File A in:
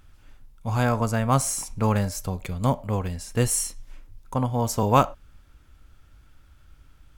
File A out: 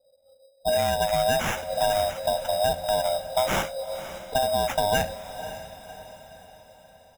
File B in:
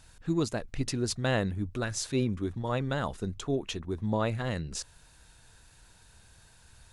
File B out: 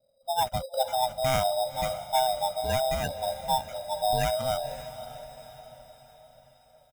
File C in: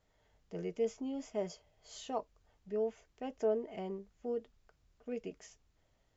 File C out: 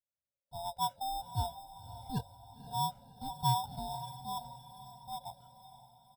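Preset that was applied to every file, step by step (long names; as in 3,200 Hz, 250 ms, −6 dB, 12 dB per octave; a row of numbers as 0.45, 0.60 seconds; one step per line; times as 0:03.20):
neighbouring bands swapped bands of 500 Hz
noise gate with hold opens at −53 dBFS
low-pass that shuts in the quiet parts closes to 370 Hz, open at −19 dBFS
noise reduction from a noise print of the clip's start 11 dB
low-shelf EQ 83 Hz −7 dB
comb filter 1.4 ms, depth 93%
in parallel at −1 dB: brickwall limiter −14 dBFS
on the sum: downward compressor, threshold −16 dBFS
decimation without filtering 10×
on a send: feedback delay with all-pass diffusion 545 ms, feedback 49%, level −13 dB
on the sum: level −4 dB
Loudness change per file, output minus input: −1.0, +3.5, +2.0 LU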